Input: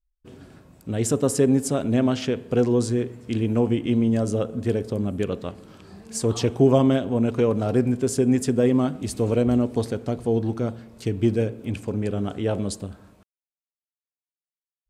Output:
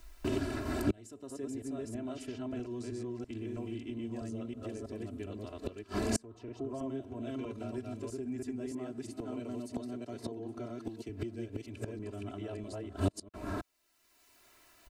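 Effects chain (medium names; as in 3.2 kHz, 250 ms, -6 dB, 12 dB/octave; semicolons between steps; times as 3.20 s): chunks repeated in reverse 324 ms, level -0.5 dB; 8.71–11.09 s: high-pass 130 Hz 24 dB/octave; compression 1.5:1, threshold -30 dBFS, peak gain reduction 7.5 dB; treble shelf 5.5 kHz -6 dB; band-stop 3.3 kHz, Q 18; comb 3 ms, depth 86%; inverted gate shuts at -22 dBFS, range -34 dB; three bands compressed up and down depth 70%; trim +14.5 dB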